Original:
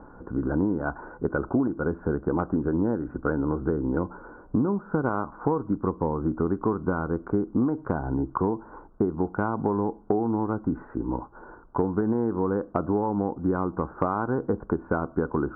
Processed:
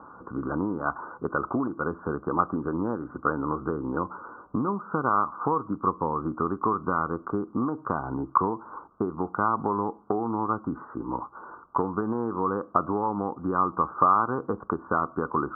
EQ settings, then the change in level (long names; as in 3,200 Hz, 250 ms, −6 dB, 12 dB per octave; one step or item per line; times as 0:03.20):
high-pass filter 91 Hz
low-pass with resonance 1,200 Hz, resonance Q 7.9
−4.5 dB